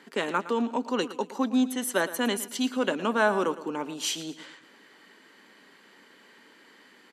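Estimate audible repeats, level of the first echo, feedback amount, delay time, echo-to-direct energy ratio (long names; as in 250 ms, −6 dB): 3, −15.0 dB, 39%, 113 ms, −14.5 dB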